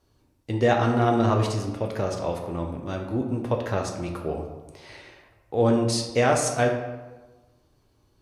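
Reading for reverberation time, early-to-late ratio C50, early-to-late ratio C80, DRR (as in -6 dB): 1.2 s, 5.5 dB, 8.0 dB, 1.0 dB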